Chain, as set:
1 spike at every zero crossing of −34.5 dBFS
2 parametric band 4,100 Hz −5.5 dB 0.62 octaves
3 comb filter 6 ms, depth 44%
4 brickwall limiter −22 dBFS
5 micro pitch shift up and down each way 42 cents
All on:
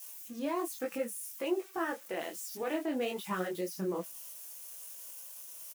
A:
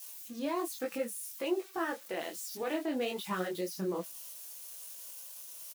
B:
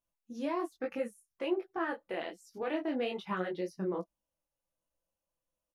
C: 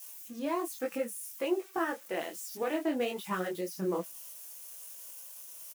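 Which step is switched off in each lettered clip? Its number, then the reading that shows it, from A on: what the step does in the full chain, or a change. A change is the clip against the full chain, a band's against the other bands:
2, 4 kHz band +2.5 dB
1, distortion level −11 dB
4, change in momentary loudness spread +2 LU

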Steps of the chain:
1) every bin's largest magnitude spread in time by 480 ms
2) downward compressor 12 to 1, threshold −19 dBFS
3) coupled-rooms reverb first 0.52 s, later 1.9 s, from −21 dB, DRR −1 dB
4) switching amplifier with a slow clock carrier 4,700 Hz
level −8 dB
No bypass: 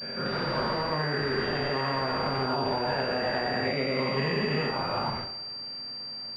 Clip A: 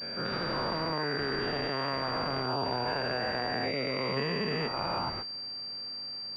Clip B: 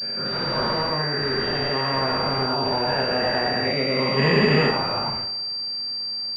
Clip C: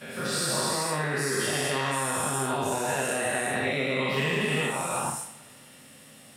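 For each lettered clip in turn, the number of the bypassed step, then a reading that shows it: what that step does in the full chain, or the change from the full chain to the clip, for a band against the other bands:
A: 3, 4 kHz band +2.5 dB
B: 2, average gain reduction 3.5 dB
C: 4, 2 kHz band +3.0 dB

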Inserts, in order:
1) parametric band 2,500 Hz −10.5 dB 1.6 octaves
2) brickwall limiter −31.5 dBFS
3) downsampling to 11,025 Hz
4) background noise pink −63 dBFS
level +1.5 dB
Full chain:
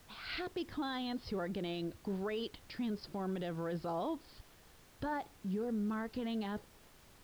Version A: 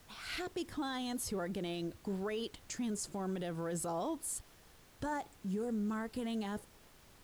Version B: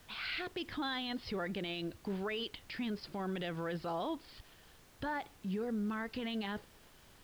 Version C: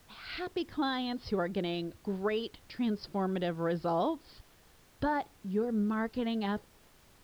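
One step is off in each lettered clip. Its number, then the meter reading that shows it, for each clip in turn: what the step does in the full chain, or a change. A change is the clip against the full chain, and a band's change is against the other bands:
3, 8 kHz band +19.0 dB
1, 2 kHz band +5.0 dB
2, average gain reduction 3.5 dB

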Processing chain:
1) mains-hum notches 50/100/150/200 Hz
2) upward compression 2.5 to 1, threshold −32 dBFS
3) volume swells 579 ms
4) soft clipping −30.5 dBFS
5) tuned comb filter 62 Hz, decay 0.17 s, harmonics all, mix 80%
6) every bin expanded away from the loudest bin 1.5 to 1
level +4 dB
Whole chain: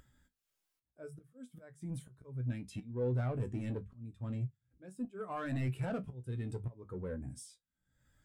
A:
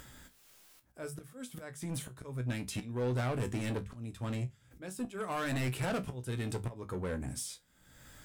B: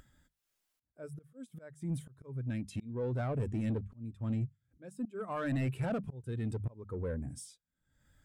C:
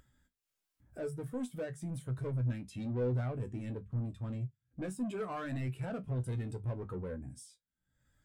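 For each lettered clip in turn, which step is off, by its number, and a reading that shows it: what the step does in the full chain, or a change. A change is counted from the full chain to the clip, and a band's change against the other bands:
6, 2 kHz band +6.0 dB
5, 250 Hz band +2.0 dB
3, change in crest factor −1.5 dB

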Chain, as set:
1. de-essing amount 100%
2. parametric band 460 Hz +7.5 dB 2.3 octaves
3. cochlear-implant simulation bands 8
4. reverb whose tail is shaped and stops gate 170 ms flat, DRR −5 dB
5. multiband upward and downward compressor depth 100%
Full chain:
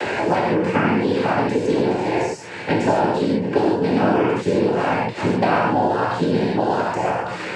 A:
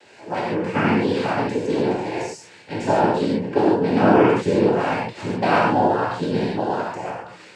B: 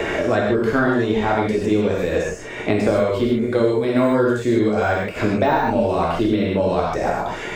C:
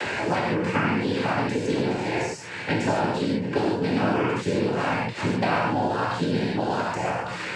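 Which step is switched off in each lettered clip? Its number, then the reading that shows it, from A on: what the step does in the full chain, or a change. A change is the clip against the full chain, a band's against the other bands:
5, change in crest factor +2.5 dB
3, 1 kHz band −3.0 dB
2, 500 Hz band −4.5 dB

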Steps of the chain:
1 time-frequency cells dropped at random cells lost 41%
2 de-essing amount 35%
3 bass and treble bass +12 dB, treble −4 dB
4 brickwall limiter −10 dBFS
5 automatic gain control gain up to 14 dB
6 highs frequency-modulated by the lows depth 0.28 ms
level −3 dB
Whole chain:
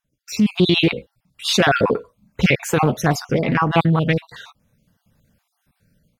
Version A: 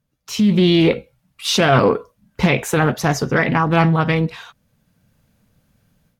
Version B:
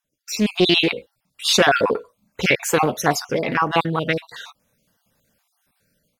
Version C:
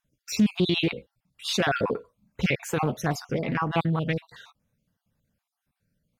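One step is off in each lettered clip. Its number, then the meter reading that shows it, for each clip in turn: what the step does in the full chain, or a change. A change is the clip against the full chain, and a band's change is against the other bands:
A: 1, 4 kHz band −2.5 dB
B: 3, 125 Hz band −9.5 dB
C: 5, change in integrated loudness −8.5 LU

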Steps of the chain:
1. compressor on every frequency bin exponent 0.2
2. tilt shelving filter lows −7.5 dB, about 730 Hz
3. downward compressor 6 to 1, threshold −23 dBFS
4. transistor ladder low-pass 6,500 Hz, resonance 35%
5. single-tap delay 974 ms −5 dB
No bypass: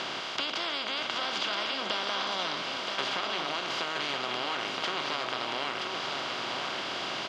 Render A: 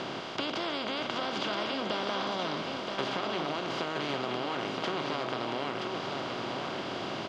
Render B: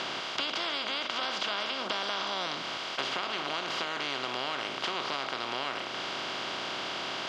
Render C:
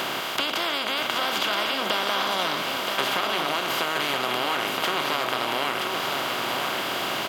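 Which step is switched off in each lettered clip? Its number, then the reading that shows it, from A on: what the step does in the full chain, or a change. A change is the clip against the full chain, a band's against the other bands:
2, 125 Hz band +10.0 dB
5, change in integrated loudness −1.0 LU
4, 4 kHz band −2.5 dB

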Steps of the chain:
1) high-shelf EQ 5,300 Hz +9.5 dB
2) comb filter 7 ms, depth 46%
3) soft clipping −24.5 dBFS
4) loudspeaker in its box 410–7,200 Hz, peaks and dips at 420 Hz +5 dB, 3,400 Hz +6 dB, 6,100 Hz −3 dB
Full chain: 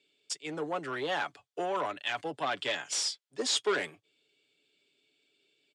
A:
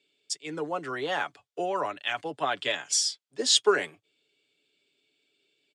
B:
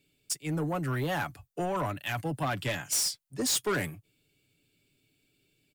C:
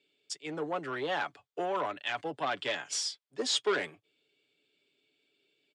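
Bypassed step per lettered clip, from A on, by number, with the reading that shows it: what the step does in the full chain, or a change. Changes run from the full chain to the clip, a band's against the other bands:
3, distortion level −8 dB
4, 125 Hz band +18.0 dB
1, 8 kHz band −2.5 dB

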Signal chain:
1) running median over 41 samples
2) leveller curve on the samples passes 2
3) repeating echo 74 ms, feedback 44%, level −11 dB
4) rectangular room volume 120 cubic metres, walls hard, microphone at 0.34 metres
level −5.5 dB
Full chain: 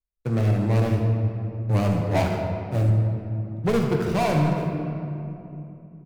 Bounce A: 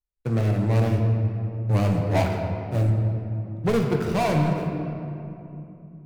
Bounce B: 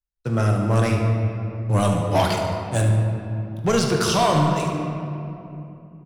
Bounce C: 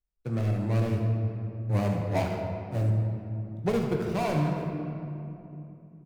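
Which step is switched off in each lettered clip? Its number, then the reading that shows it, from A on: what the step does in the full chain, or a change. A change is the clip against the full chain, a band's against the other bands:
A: 3, change in momentary loudness spread +2 LU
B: 1, 4 kHz band +8.0 dB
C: 2, change in integrated loudness −5.5 LU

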